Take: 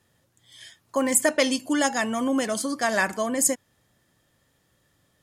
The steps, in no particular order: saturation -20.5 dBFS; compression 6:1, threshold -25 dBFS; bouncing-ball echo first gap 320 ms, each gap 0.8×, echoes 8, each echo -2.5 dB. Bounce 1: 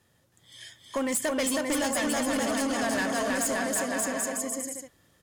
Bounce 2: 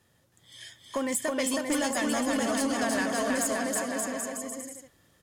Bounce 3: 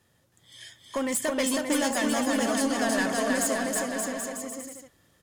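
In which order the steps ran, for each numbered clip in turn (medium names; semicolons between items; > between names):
bouncing-ball echo > saturation > compression; compression > bouncing-ball echo > saturation; saturation > compression > bouncing-ball echo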